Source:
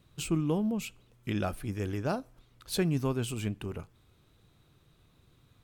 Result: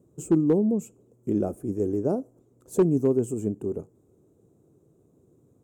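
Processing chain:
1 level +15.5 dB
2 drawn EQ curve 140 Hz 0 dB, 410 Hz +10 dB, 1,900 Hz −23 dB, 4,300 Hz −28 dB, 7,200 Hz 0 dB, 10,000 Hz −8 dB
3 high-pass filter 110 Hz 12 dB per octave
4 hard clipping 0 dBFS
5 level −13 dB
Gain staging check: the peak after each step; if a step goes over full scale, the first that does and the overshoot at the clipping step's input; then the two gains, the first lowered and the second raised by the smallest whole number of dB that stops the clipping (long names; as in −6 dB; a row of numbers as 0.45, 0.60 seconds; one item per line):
−0.5, +4.5, +4.5, 0.0, −13.0 dBFS
step 2, 4.5 dB
step 1 +10.5 dB, step 5 −8 dB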